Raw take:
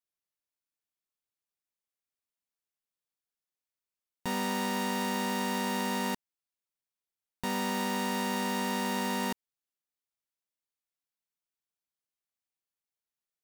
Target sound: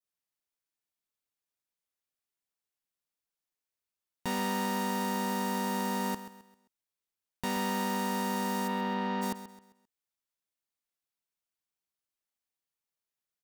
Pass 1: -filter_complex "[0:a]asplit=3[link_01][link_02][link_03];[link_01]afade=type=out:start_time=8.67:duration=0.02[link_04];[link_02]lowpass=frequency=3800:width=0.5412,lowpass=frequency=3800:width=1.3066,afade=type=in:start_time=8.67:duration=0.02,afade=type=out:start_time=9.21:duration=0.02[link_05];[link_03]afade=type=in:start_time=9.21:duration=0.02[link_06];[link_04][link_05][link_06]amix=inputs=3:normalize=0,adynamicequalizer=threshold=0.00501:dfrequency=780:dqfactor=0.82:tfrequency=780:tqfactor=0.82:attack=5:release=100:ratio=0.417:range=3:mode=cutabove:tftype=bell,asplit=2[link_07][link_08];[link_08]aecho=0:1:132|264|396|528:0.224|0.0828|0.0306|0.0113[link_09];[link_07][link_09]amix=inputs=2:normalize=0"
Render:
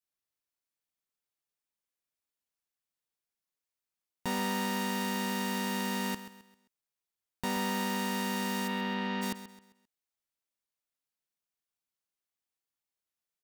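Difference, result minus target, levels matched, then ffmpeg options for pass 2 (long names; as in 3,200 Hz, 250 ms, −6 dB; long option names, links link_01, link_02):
2,000 Hz band +2.5 dB
-filter_complex "[0:a]asplit=3[link_01][link_02][link_03];[link_01]afade=type=out:start_time=8.67:duration=0.02[link_04];[link_02]lowpass=frequency=3800:width=0.5412,lowpass=frequency=3800:width=1.3066,afade=type=in:start_time=8.67:duration=0.02,afade=type=out:start_time=9.21:duration=0.02[link_05];[link_03]afade=type=in:start_time=9.21:duration=0.02[link_06];[link_04][link_05][link_06]amix=inputs=3:normalize=0,adynamicequalizer=threshold=0.00501:dfrequency=2600:dqfactor=0.82:tfrequency=2600:tqfactor=0.82:attack=5:release=100:ratio=0.417:range=3:mode=cutabove:tftype=bell,asplit=2[link_07][link_08];[link_08]aecho=0:1:132|264|396|528:0.224|0.0828|0.0306|0.0113[link_09];[link_07][link_09]amix=inputs=2:normalize=0"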